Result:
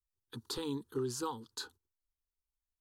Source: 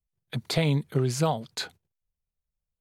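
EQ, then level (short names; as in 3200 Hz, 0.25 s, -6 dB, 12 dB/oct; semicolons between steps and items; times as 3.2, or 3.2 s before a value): Butterworth band-stop 680 Hz, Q 2.4; fixed phaser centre 590 Hz, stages 6; -6.0 dB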